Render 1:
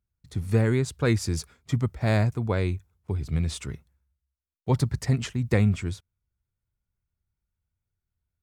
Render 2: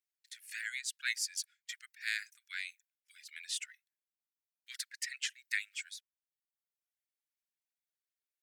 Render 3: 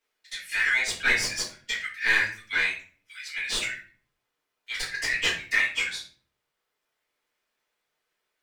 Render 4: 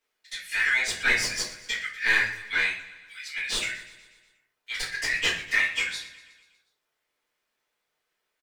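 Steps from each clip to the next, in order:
steep high-pass 1600 Hz 72 dB/oct; reverb removal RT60 0.92 s
overdrive pedal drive 19 dB, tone 1300 Hz, clips at -18 dBFS; shoebox room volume 35 m³, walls mixed, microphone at 1.6 m; gain +3 dB
feedback echo 0.121 s, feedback 59%, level -17 dB

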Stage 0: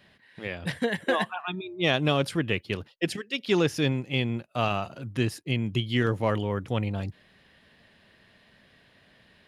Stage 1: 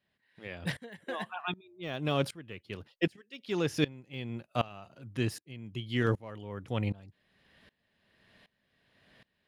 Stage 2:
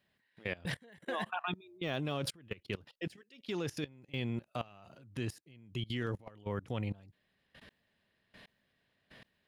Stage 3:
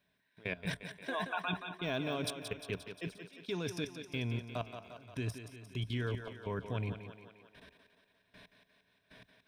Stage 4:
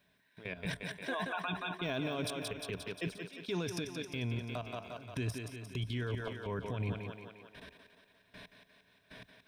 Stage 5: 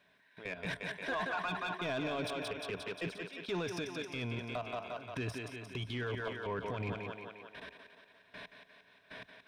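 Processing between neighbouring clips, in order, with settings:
de-esser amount 80%; dB-ramp tremolo swelling 1.3 Hz, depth 23 dB
level quantiser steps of 21 dB; gain +6.5 dB
ripple EQ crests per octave 1.6, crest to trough 8 dB; on a send: thinning echo 0.176 s, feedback 61%, high-pass 190 Hz, level -8 dB; on the sum: gain -1 dB
limiter -33 dBFS, peak gain reduction 11.5 dB; gain +5.5 dB
overdrive pedal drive 13 dB, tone 2000 Hz, clips at -27.5 dBFS

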